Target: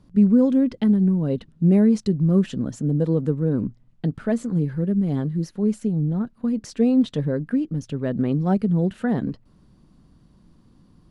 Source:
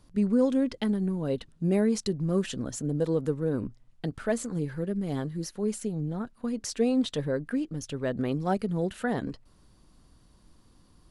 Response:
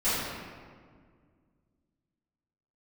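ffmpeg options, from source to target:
-af "lowpass=f=3800:p=1,equalizer=f=180:w=0.78:g=10.5"

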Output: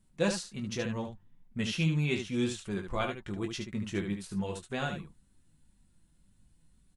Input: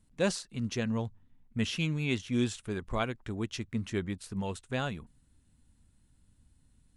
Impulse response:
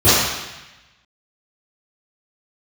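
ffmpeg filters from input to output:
-filter_complex "[0:a]flanger=delay=5.1:depth=1:regen=36:speed=1.9:shape=triangular,asplit=2[s0][s1];[s1]aecho=0:1:20|74:0.447|0.447[s2];[s0][s2]amix=inputs=2:normalize=0,volume=1.33"

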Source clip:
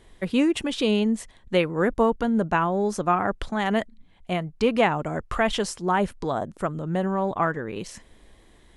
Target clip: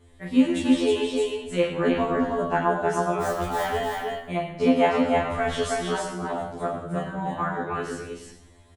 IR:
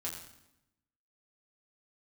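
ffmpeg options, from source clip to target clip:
-filter_complex "[0:a]asettb=1/sr,asplit=3[s0][s1][s2];[s0]atrim=end=1.204[s3];[s1]atrim=start=1.2:end=2.34,asetpts=PTS-STARTPTS,afade=t=in:d=0.004:c=qsin,afade=t=out:st=1.136:d=0.004:c=qsin,lowpass=7300[s4];[s2]atrim=start=2.336[s5];[s3][s4]acrossfade=d=0.004:c1=hsin:c2=qsin[s6];[s6][s5]acrossfade=d=0.004:c1=qsin:c2=hsin,asettb=1/sr,asplit=3[s7][s8][s9];[s7]atrim=end=3.214[s10];[s8]atrim=start=3.21:end=3.64,asetpts=PTS-STARTPTS,afade=t=in:d=0.004:c=qsin,afade=t=out:st=0.426:d=0.004:c=qsin,acrusher=bits=6:dc=4:mix=0:aa=0.000001[s11];[s9]atrim=start=3.636[s12];[s10][s11]acrossfade=d=0.004:c1=hsin:c2=qsin[s13];[s13][s12]acrossfade=d=0.004:c1=qsin:c2=hsin,asettb=1/sr,asplit=3[s14][s15][s16];[s14]atrim=end=5.954[s17];[s15]atrim=start=5.95:end=6.6,asetpts=PTS-STARTPTS,afade=t=in:d=0.004:c=qsin,afade=t=out:st=0.646:d=0.004:c=qsin,acompressor=threshold=0.0316:ratio=2[s18];[s16]atrim=start=6.596[s19];[s17][s18]acrossfade=d=0.004:c1=hsin:c2=qsin[s20];[s20][s19]acrossfade=d=0.004:c1=qsin:c2=hsin,aecho=1:1:314:0.708[s21];[1:a]atrim=start_sample=2205[s22];[s21][s22]afir=irnorm=-1:irlink=0,afftfilt=real='re*2*eq(mod(b,4),0)':imag='im*2*eq(mod(b,4),0)':win_size=2048:overlap=0.75"

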